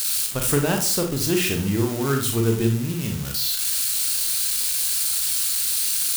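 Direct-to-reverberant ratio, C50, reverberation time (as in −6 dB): 3.0 dB, 7.0 dB, 0.45 s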